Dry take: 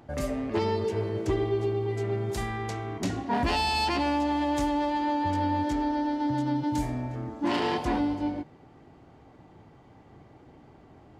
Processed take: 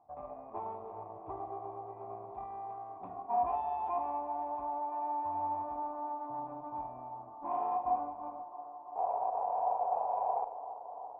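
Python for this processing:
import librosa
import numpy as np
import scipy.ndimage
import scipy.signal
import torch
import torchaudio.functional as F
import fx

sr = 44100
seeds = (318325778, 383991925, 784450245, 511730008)

y = fx.spec_paint(x, sr, seeds[0], shape='noise', start_s=8.95, length_s=1.5, low_hz=400.0, high_hz=1000.0, level_db=-28.0)
y = fx.cheby_harmonics(y, sr, harmonics=(6, 7), levels_db=(-23, -27), full_scale_db=-15.5)
y = fx.formant_cascade(y, sr, vowel='a')
y = fx.echo_wet_bandpass(y, sr, ms=337, feedback_pct=84, hz=670.0, wet_db=-14.0)
y = fx.rev_schroeder(y, sr, rt60_s=0.81, comb_ms=33, drr_db=10.0)
y = F.gain(torch.from_numpy(y), 3.0).numpy()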